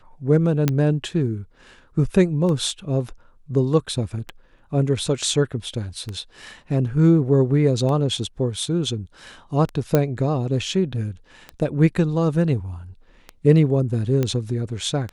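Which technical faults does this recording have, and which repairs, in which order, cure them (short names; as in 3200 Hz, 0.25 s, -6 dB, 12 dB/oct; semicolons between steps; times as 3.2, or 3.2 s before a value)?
tick 33 1/3 rpm -17 dBFS
0.68 pop -5 dBFS
9.95 pop -5 dBFS
14.23 pop -10 dBFS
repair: de-click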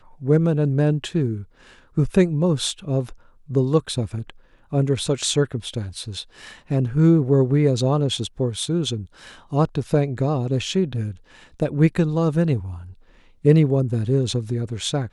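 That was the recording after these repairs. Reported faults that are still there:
none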